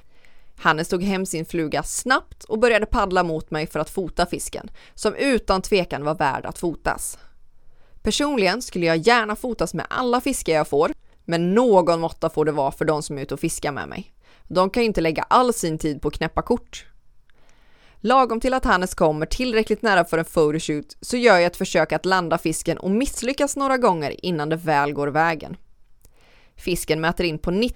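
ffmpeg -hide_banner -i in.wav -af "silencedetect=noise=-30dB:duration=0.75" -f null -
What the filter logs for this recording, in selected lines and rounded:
silence_start: 7.14
silence_end: 8.05 | silence_duration: 0.91
silence_start: 16.78
silence_end: 18.04 | silence_duration: 1.26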